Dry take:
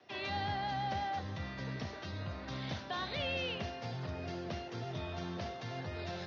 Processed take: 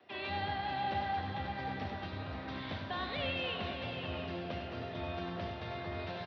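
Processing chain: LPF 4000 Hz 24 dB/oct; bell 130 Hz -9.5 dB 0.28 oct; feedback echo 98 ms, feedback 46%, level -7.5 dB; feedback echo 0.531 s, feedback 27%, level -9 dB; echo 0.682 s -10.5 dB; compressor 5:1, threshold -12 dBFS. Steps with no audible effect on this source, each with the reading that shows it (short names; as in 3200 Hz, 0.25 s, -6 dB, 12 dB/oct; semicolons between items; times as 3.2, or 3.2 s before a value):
compressor, threshold -12 dBFS: input peak -25.0 dBFS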